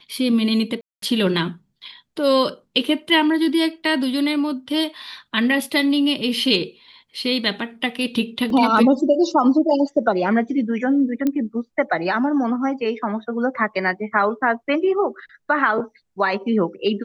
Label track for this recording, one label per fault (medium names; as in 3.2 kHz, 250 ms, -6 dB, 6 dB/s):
0.810000	1.020000	dropout 213 ms
8.500000	8.500000	dropout 2.7 ms
11.270000	11.270000	pop -10 dBFS